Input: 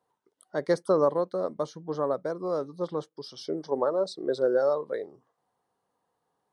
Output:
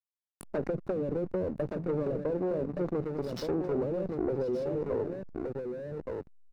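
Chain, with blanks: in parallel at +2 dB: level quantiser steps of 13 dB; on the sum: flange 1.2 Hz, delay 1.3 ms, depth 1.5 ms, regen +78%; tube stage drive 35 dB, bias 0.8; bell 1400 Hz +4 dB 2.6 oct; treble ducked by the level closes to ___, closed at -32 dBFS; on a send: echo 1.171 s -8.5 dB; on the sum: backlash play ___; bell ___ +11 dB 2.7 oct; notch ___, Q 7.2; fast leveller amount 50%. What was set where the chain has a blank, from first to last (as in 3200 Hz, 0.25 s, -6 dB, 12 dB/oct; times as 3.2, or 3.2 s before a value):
370 Hz, -46 dBFS, 210 Hz, 3200 Hz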